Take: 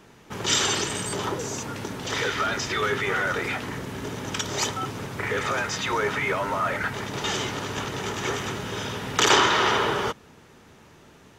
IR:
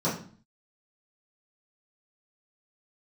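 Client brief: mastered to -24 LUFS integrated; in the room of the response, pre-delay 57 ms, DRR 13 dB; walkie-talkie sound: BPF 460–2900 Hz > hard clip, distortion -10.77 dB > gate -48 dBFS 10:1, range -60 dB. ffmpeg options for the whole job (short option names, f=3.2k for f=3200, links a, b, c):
-filter_complex "[0:a]asplit=2[a][b];[1:a]atrim=start_sample=2205,adelay=57[c];[b][c]afir=irnorm=-1:irlink=0,volume=-24dB[d];[a][d]amix=inputs=2:normalize=0,highpass=460,lowpass=2.9k,asoftclip=type=hard:threshold=-22dB,agate=range=-60dB:threshold=-48dB:ratio=10,volume=5dB"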